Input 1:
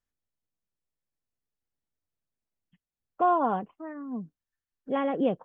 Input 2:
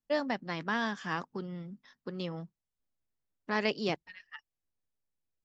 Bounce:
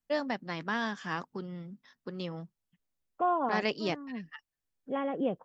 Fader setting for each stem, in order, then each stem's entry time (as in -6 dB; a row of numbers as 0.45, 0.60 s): -5.0, -0.5 dB; 0.00, 0.00 s